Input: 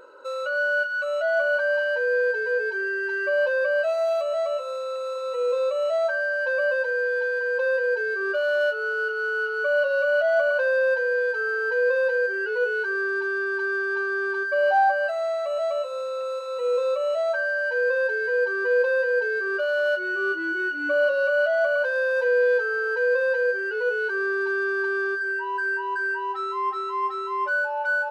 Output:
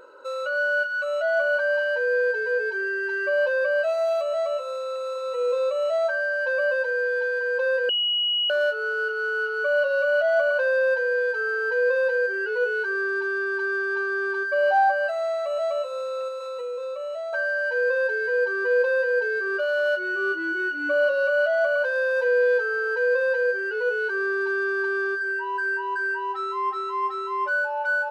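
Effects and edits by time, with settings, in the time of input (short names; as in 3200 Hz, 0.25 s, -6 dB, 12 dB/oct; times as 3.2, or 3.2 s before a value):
7.89–8.5 bleep 2910 Hz -20.5 dBFS
16.28–17.33 compressor, threshold -29 dBFS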